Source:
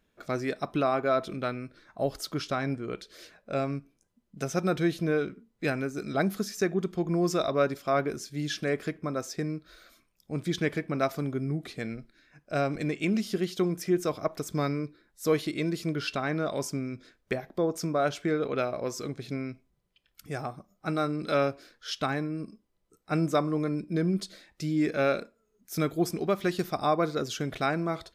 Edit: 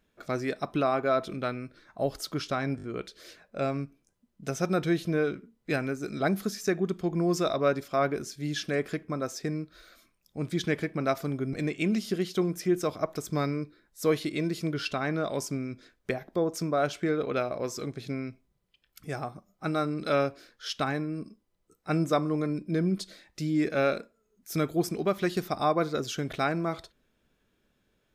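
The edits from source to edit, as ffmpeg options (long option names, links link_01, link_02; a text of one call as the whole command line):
ffmpeg -i in.wav -filter_complex "[0:a]asplit=5[link_01][link_02][link_03][link_04][link_05];[link_01]atrim=end=2.792[link_06];[link_02]atrim=start=2.768:end=2.792[link_07];[link_03]atrim=start=2.768:end=2.792[link_08];[link_04]atrim=start=2.768:end=11.472[link_09];[link_05]atrim=start=12.748[link_10];[link_06][link_07]acrossfade=duration=0.004:curve1=hsin:curve2=hsin[link_11];[link_11][link_08]acrossfade=duration=0.004:curve1=hsin:curve2=hsin[link_12];[link_12][link_09]acrossfade=duration=0.004:curve1=hsin:curve2=hsin[link_13];[link_13][link_10]acrossfade=duration=0.004:curve1=hsin:curve2=hsin" out.wav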